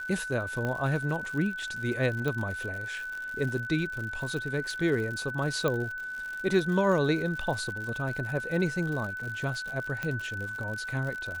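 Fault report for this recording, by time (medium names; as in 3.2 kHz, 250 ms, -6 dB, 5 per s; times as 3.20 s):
crackle 100 per s -35 dBFS
whine 1.5 kHz -34 dBFS
0.65 s: pop -20 dBFS
2.28 s: pop -19 dBFS
5.68 s: pop -15 dBFS
10.03 s: pop -18 dBFS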